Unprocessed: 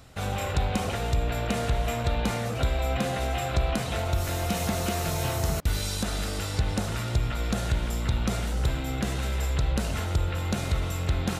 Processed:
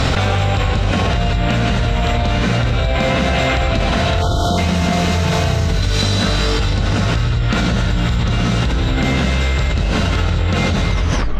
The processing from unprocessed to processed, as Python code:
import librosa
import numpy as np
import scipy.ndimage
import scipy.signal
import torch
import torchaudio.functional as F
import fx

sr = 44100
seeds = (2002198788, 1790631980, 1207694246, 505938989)

y = fx.tape_stop_end(x, sr, length_s=0.56)
y = fx.air_absorb(y, sr, metres=180.0)
y = fx.rev_gated(y, sr, seeds[0], gate_ms=240, shape='rising', drr_db=-4.0)
y = fx.spec_erase(y, sr, start_s=4.22, length_s=0.36, low_hz=1500.0, high_hz=3000.0)
y = fx.peak_eq(y, sr, hz=14000.0, db=9.5, octaves=2.6)
y = fx.env_flatten(y, sr, amount_pct=100)